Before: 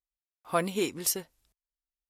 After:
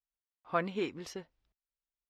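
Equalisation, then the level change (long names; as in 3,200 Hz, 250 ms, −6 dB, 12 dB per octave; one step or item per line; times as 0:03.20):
dynamic equaliser 1,600 Hz, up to +5 dB, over −42 dBFS, Q 1.3
high-frequency loss of the air 210 metres
−4.5 dB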